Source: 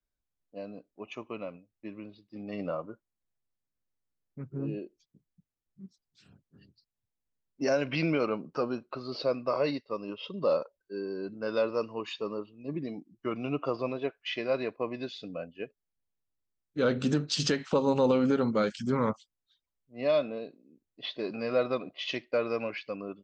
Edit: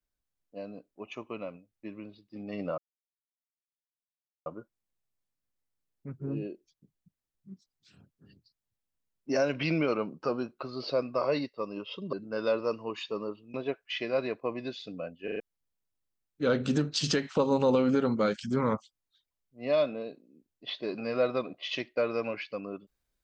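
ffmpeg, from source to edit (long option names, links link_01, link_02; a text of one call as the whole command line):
ffmpeg -i in.wav -filter_complex "[0:a]asplit=8[link_01][link_02][link_03][link_04][link_05][link_06][link_07][link_08];[link_01]atrim=end=2.78,asetpts=PTS-STARTPTS,afade=type=out:start_time=2.776:duration=0.004:curve=hsin,apad=pad_dur=1.68[link_09];[link_02]atrim=start=2.78:end=10.452,asetpts=PTS-STARTPTS,afade=type=in:duration=0.004:curve=hsin[link_10];[link_03]atrim=start=11.228:end=12.642[link_11];[link_04]atrim=start=13.898:end=15.642[link_12];[link_05]atrim=start=15.598:end=15.642[link_13];[link_06]atrim=start=15.598:end=15.642[link_14];[link_07]atrim=start=15.598:end=15.642[link_15];[link_08]atrim=start=15.758[link_16];[link_09][link_10]concat=n=2:v=0:a=1[link_17];[link_17][link_11]acrossfade=duration=0.004:curve1=hsin:curve2=hsin[link_18];[link_18][link_12]acrossfade=duration=0.004:curve1=hsin:curve2=hsin[link_19];[link_19][link_13]acrossfade=duration=0.004:curve1=hsin:curve2=hsin[link_20];[link_20][link_14]acrossfade=duration=0.004:curve1=hsin:curve2=hsin[link_21];[link_21][link_15]acrossfade=duration=0.004:curve1=hsin:curve2=hsin[link_22];[link_22][link_16]acrossfade=duration=0.004:curve1=hsin:curve2=hsin" out.wav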